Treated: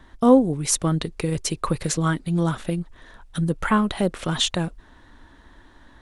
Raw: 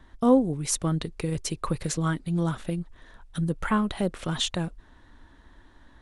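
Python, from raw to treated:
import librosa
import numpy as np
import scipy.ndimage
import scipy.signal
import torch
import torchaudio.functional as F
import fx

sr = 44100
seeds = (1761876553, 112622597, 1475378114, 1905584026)

y = fx.low_shelf(x, sr, hz=160.0, db=-3.5)
y = y * 10.0 ** (5.5 / 20.0)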